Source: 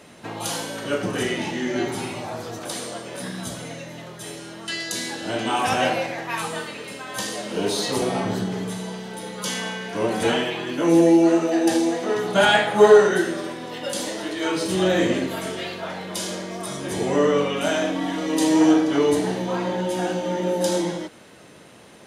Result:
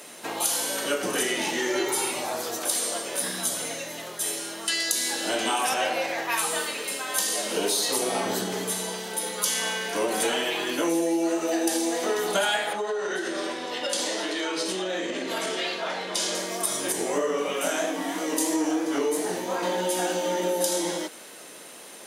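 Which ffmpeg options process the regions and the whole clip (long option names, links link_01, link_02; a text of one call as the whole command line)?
ffmpeg -i in.wav -filter_complex "[0:a]asettb=1/sr,asplit=3[link_01][link_02][link_03];[link_01]atrim=end=1.584[link_04];[link_02]atrim=start=1.58:end=2.11,asetpts=PTS-STARTPTS,afade=type=in:duration=0.004:curve=qsin,afade=type=out:start_time=0.526:duration=0.004:curve=qsin,equalizer=frequency=1100:width=7.1:gain=8,aecho=1:1:2.2:0.63,atrim=end_sample=23373[link_05];[link_03]atrim=start=2.106[link_06];[link_04][link_05]acrossfade=duration=0.004:curve1=hsin:curve2=qsin[link_07];[link_07][link_06]acrossfade=duration=0.004:curve1=qsin:curve2=hsin,asettb=1/sr,asplit=3[link_08][link_09][link_10];[link_08]atrim=end=5.744[link_11];[link_09]atrim=start=5.74:end=6.32,asetpts=PTS-STARTPTS,afade=type=in:duration=0.004:curve=qsin,afade=type=out:start_time=0.576:duration=0.004:curve=qsin,equalizer=frequency=11000:width=0.64:gain=-6.5,bandreject=frequency=50:width_type=h:width=6,bandreject=frequency=100:width_type=h:width=6,bandreject=frequency=150:width_type=h:width=6,bandreject=frequency=200:width_type=h:width=6,bandreject=frequency=250:width_type=h:width=6,bandreject=frequency=300:width_type=h:width=6,bandreject=frequency=350:width_type=h:width=6,bandreject=frequency=400:width_type=h:width=6[link_12];[link_10]atrim=start=6.316[link_13];[link_11][link_12]acrossfade=duration=0.004:curve1=hsin:curve2=qsin[link_14];[link_14][link_13]acrossfade=duration=0.004:curve1=qsin:curve2=hsin,asettb=1/sr,asplit=3[link_15][link_16][link_17];[link_15]atrim=end=12.734[link_18];[link_16]atrim=start=12.73:end=16.35,asetpts=PTS-STARTPTS,afade=type=in:duration=0.004:curve=qsin,afade=type=out:start_time=3.616:duration=0.004:curve=qsin,highpass=140,lowpass=5800,acompressor=threshold=-25dB:ratio=16:attack=3.2:release=140:knee=1:detection=peak[link_19];[link_17]atrim=start=16.346[link_20];[link_18][link_19]acrossfade=duration=0.004:curve1=hsin:curve2=qsin[link_21];[link_21][link_20]acrossfade=duration=0.004:curve1=qsin:curve2=hsin,asettb=1/sr,asplit=3[link_22][link_23][link_24];[link_22]atrim=end=16.924[link_25];[link_23]atrim=start=16.92:end=19.63,asetpts=PTS-STARTPTS,afade=type=in:duration=0.004:curve=qsin,afade=type=out:start_time=2.706:duration=0.004:curve=qsin,equalizer=frequency=3600:width=1.5:gain=-5,flanger=delay=18.5:depth=6.6:speed=3[link_26];[link_24]atrim=start=19.626[link_27];[link_25][link_26]acrossfade=duration=0.004:curve1=hsin:curve2=qsin[link_28];[link_28][link_27]acrossfade=duration=0.004:curve1=qsin:curve2=hsin,highpass=320,aemphasis=mode=production:type=50fm,acompressor=threshold=-24dB:ratio=6,volume=2dB" out.wav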